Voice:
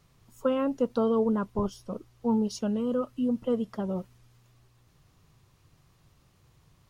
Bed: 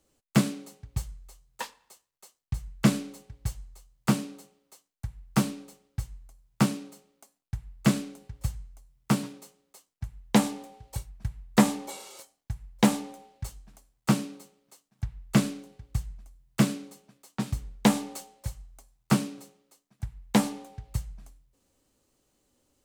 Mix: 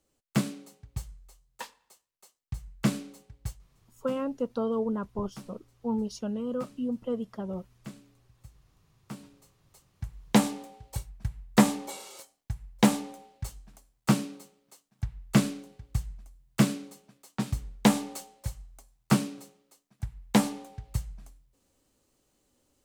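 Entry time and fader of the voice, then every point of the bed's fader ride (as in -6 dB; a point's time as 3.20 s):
3.60 s, -4.0 dB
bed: 3.50 s -4.5 dB
3.71 s -21 dB
8.91 s -21 dB
10.08 s 0 dB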